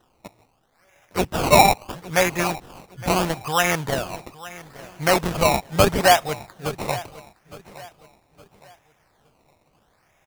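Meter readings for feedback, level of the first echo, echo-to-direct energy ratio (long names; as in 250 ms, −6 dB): 36%, −18.0 dB, −17.5 dB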